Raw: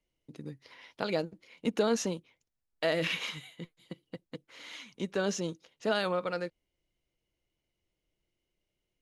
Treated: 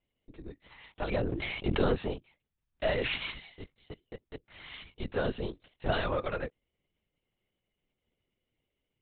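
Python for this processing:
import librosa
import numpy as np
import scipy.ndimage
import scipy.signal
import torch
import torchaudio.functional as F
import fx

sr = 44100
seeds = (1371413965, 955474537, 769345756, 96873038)

y = fx.peak_eq(x, sr, hz=130.0, db=-11.5, octaves=0.36)
y = fx.lpc_vocoder(y, sr, seeds[0], excitation='whisper', order=10)
y = fx.sustainer(y, sr, db_per_s=25.0, at=(1.09, 1.92))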